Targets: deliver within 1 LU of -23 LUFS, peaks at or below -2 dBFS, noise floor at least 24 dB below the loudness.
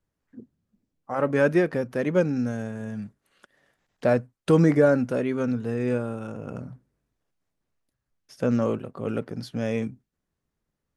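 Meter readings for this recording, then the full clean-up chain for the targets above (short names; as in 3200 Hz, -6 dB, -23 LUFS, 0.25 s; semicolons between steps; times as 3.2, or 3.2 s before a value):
loudness -25.0 LUFS; peak -7.5 dBFS; loudness target -23.0 LUFS
-> gain +2 dB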